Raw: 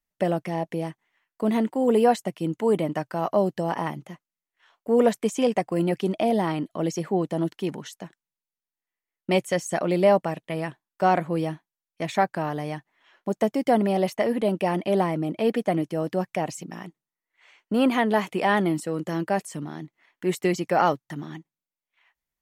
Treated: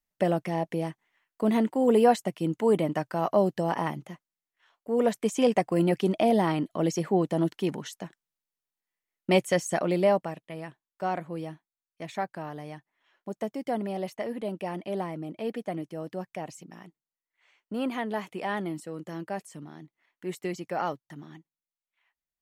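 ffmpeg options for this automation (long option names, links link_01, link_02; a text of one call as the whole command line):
ffmpeg -i in.wav -af "volume=6dB,afade=type=out:start_time=3.99:duration=0.92:silence=0.501187,afade=type=in:start_time=4.91:duration=0.59:silence=0.446684,afade=type=out:start_time=9.56:duration=0.9:silence=0.334965" out.wav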